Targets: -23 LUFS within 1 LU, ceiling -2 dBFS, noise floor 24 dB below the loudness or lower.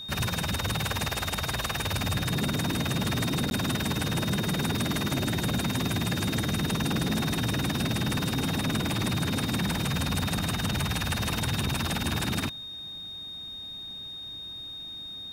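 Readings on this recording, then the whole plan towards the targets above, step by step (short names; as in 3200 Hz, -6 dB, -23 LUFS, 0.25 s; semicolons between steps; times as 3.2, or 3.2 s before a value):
dropouts 1; longest dropout 11 ms; steady tone 3700 Hz; tone level -37 dBFS; loudness -29.0 LUFS; peak -16.0 dBFS; loudness target -23.0 LUFS
-> interpolate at 3.5, 11 ms; notch 3700 Hz, Q 30; gain +6 dB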